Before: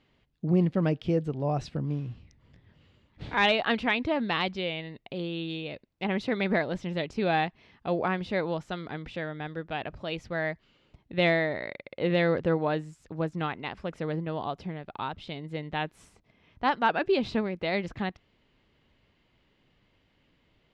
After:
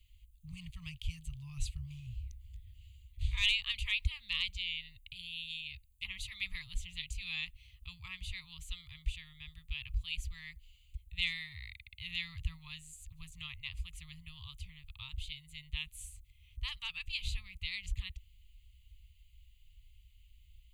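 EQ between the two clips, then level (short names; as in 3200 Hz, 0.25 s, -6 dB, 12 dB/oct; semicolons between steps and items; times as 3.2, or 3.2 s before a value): inverse Chebyshev band-stop 260–700 Hz, stop band 80 dB; band shelf 2500 Hz -15 dB; fixed phaser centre 1500 Hz, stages 6; +17.0 dB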